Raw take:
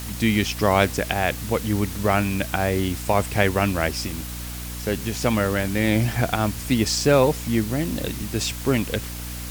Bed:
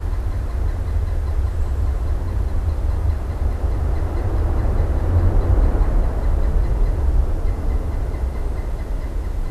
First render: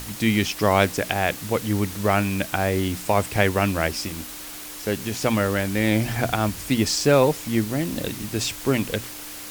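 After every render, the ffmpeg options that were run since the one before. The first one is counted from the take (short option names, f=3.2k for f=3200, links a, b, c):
-af "bandreject=f=60:t=h:w=6,bandreject=f=120:t=h:w=6,bandreject=f=180:t=h:w=6,bandreject=f=240:t=h:w=6"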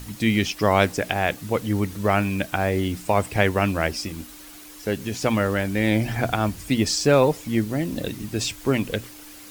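-af "afftdn=nr=8:nf=-37"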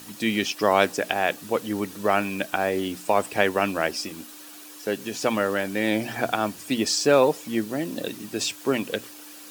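-af "highpass=260,bandreject=f=2.1k:w=11"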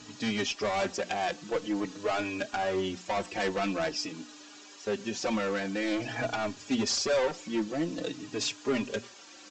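-filter_complex "[0:a]aresample=16000,volume=22dB,asoftclip=hard,volume=-22dB,aresample=44100,asplit=2[a][b];[b]adelay=4.3,afreqshift=-0.48[c];[a][c]amix=inputs=2:normalize=1"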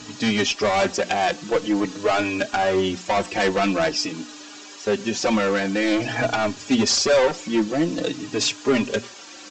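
-af "volume=9.5dB"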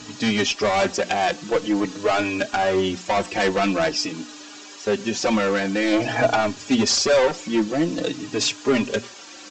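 -filter_complex "[0:a]asettb=1/sr,asplit=3[a][b][c];[a]atrim=end=5.934[d];[b]atrim=start=5.93:end=6.41,asetpts=PTS-STARTPTS,afade=t=in:d=0.004:c=qsin,afade=t=out:st=0.476:d=0.004:c=qsin,equalizer=f=660:w=0.89:g=5[e];[c]atrim=start=6.406[f];[d][e]acrossfade=d=0.004:c1=hsin:c2=qsin[g];[g][f]acrossfade=d=0.004:c1=qsin:c2=hsin"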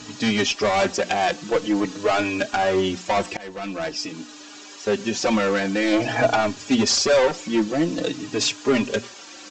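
-filter_complex "[0:a]asplit=2[a][b];[a]atrim=end=3.37,asetpts=PTS-STARTPTS,afade=t=out:st=3.366:d=0.004:c=hsin:silence=0.0841395[c];[b]atrim=start=3.37,asetpts=PTS-STARTPTS,afade=t=in:d=1.69:c=qsin:silence=0.0841395[d];[c][d]concat=n=2:v=0:a=1"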